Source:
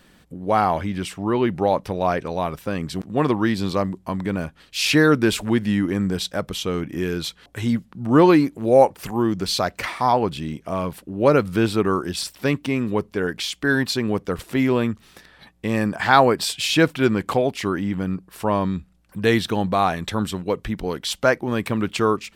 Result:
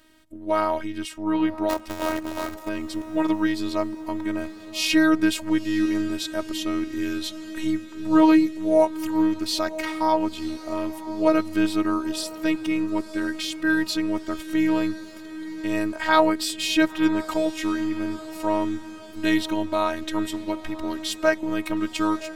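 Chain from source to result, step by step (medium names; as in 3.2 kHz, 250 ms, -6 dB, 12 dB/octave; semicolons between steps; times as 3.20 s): 1.69–2.69 s: cycle switcher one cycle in 2, muted; robot voice 315 Hz; on a send: echo that smears into a reverb 972 ms, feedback 55%, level -15.5 dB; on the sum: trim -1 dB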